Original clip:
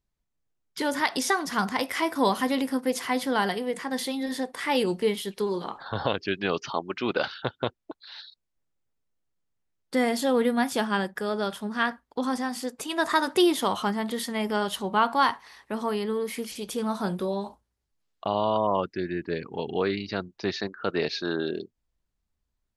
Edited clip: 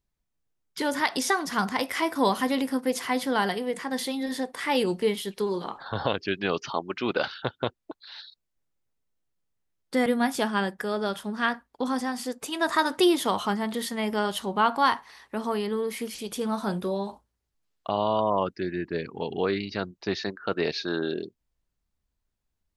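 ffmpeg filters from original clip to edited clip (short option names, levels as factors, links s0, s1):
-filter_complex "[0:a]asplit=2[s0][s1];[s0]atrim=end=10.062[s2];[s1]atrim=start=10.428[s3];[s2][s3]acrossfade=d=0.004:c1=hsin:c2=hsin"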